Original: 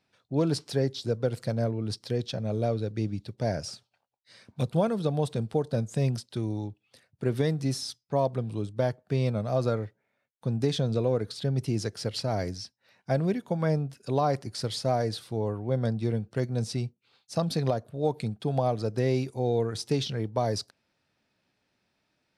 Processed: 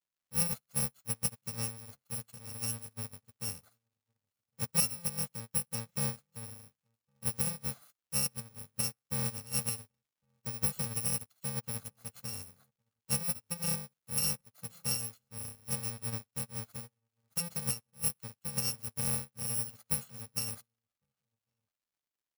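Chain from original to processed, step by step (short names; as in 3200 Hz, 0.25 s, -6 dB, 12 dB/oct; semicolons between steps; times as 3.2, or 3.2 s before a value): FFT order left unsorted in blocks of 128 samples; outdoor echo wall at 190 m, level -14 dB; crackle 280/s -36 dBFS; on a send: feedback echo 61 ms, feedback 43%, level -21 dB; on the sum: upward expander 2.5:1, over -46 dBFS; gain -2.5 dB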